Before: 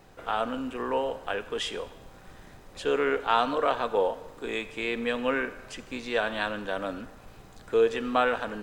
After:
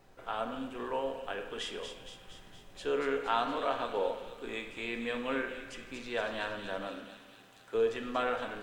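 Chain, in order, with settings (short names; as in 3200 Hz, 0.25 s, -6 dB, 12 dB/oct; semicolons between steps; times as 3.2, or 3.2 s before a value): 6.87–7.75 HPF 400 Hz 6 dB/oct; thin delay 0.233 s, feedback 62%, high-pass 2900 Hz, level -5 dB; on a send at -5.5 dB: reverb RT60 1.1 s, pre-delay 3 ms; on the sum: gain -7.5 dB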